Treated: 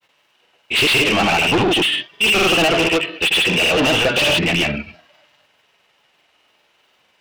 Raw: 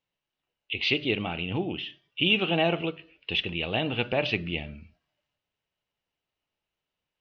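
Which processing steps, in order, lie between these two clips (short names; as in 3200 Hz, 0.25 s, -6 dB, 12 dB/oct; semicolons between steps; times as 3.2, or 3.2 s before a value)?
grains, pitch spread up and down by 0 st; overdrive pedal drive 34 dB, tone 3800 Hz, clips at -11.5 dBFS; gain +4 dB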